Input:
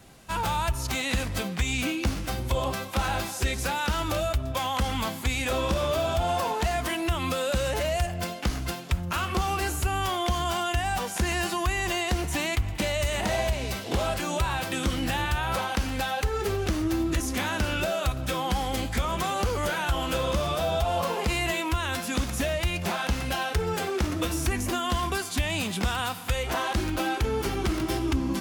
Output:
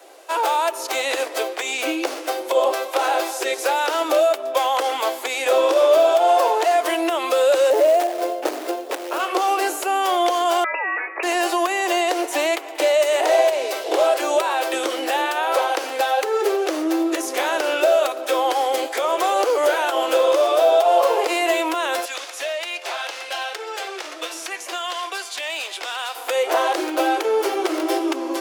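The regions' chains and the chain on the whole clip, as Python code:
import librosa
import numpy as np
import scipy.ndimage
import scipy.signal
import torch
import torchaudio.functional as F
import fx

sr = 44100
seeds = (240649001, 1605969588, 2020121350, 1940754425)

y = fx.chain(x, sr, fx.tilt_shelf(db=9.0, hz=680.0),
    fx.quant_float(bits=2), at=(7.7, 9.2))
y = fx.chain(y, sr, fx.highpass(hz=410.0, slope=6),
    fx.freq_invert(carrier_hz=2700), at=(10.64, 11.23))
y = fx.chain(y, sr, fx.bandpass_q(hz=3500.0, q=0.59),
    fx.clip_hard(threshold_db=-26.5), at=(22.05, 26.15))
y = scipy.signal.sosfilt(scipy.signal.butter(12, 310.0, 'highpass', fs=sr, output='sos'), y)
y = fx.peak_eq(y, sr, hz=590.0, db=9.5, octaves=1.1)
y = F.gain(torch.from_numpy(y), 4.5).numpy()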